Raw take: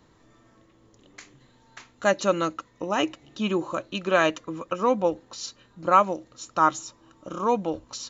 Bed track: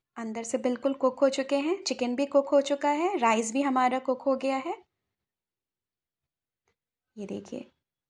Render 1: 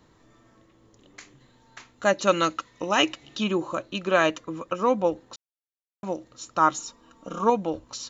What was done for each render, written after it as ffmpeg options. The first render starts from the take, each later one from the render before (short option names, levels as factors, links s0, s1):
-filter_complex "[0:a]asettb=1/sr,asplit=3[s0][s1][s2];[s0]atrim=end=2.274[s3];[s1]atrim=start=2.27:end=3.44,asetpts=PTS-STARTPTS,afade=t=in:d=0.004:c=qsin,afade=t=out:st=1.166:d=0.004:c=qsin,equalizer=f=3700:w=0.4:g=8.5[s4];[s2]atrim=start=3.436[s5];[s3][s4]acrossfade=d=0.004:c1=hsin:c2=qsin[s6];[s6][s5]acrossfade=d=0.004:c1=qsin:c2=hsin,asettb=1/sr,asplit=3[s7][s8][s9];[s7]atrim=end=6.744[s10];[s8]atrim=start=6.74:end=7.5,asetpts=PTS-STARTPTS,afade=t=in:d=0.004:c=qsin,afade=t=out:st=0.756:d=0.004:c=qsin,aecho=1:1:4.3:0.65,atrim=end_sample=33516[s11];[s9]atrim=start=7.496[s12];[s10][s11]acrossfade=d=0.004:c1=hsin:c2=qsin[s13];[s13][s12]acrossfade=d=0.004:c1=qsin:c2=hsin,asplit=3[s14][s15][s16];[s14]atrim=end=5.36,asetpts=PTS-STARTPTS,afade=t=out:st=5.356:d=0.004:c=hsin[s17];[s15]atrim=start=5.36:end=6.03,asetpts=PTS-STARTPTS,volume=0[s18];[s16]atrim=start=6.03,asetpts=PTS-STARTPTS,afade=t=in:d=0.004:c=hsin[s19];[s17][s18][s19]concat=n=3:v=0:a=1"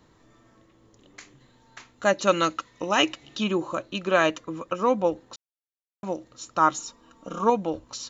-af anull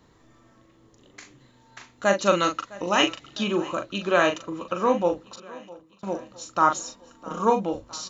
-filter_complex "[0:a]asplit=2[s0][s1];[s1]adelay=40,volume=0.473[s2];[s0][s2]amix=inputs=2:normalize=0,aecho=1:1:658|1316|1974|2632:0.0944|0.0529|0.0296|0.0166"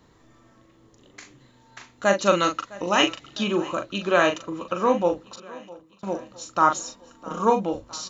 -af "volume=1.12"